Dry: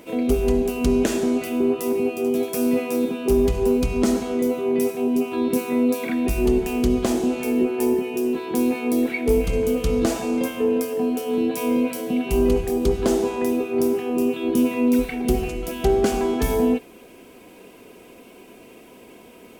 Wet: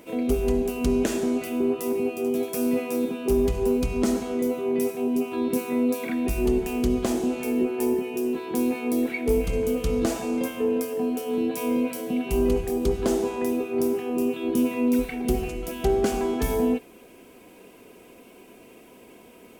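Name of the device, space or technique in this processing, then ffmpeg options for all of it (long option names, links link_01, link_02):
exciter from parts: -filter_complex "[0:a]asplit=2[link_01][link_02];[link_02]highpass=3200,asoftclip=type=tanh:threshold=-32dB,highpass=3600,volume=-13.5dB[link_03];[link_01][link_03]amix=inputs=2:normalize=0,volume=-3.5dB"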